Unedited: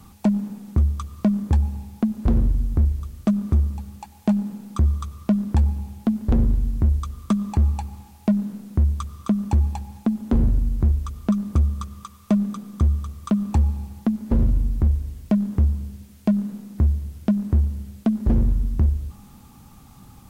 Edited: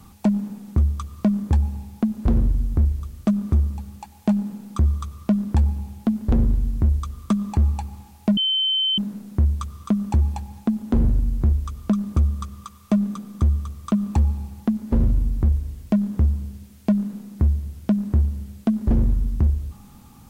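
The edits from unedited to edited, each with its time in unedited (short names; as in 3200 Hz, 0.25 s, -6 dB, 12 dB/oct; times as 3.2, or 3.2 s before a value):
8.37 add tone 3080 Hz -18 dBFS 0.61 s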